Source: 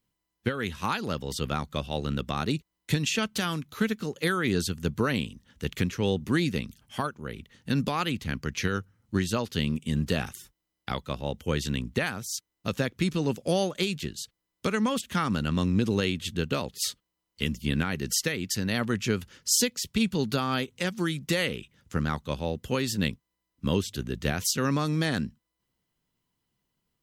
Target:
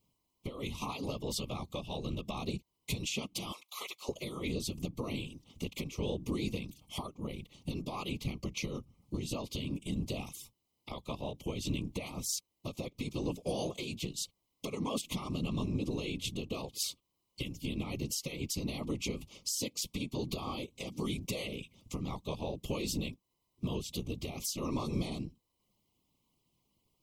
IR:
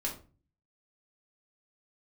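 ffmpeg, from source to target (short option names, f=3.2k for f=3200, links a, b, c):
-filter_complex "[0:a]asettb=1/sr,asplit=3[a][b][c];[a]atrim=end=3.524[d];[b]atrim=start=3.52:end=4.09,asetpts=PTS-STARTPTS,afade=t=in:d=0.004:c=qsin,afade=t=out:st=0.566:d=0.004:c=qsin,highpass=f=760:w=0.5412,highpass=f=760:w=1.3066[e];[c]atrim=start=4.086[f];[d][e]acrossfade=d=0.004:c1=hsin:c2=qsin[g];[g][f]acrossfade=d=0.004:c1=qsin:c2=hsin,acompressor=threshold=-30dB:ratio=5,alimiter=level_in=2.5dB:limit=-24dB:level=0:latency=1:release=412,volume=-2.5dB,afftfilt=real='hypot(re,im)*cos(2*PI*random(0))':imag='hypot(re,im)*sin(2*PI*random(1))':win_size=512:overlap=0.75,asuperstop=centerf=1600:order=8:qfactor=1.7,volume=8.5dB"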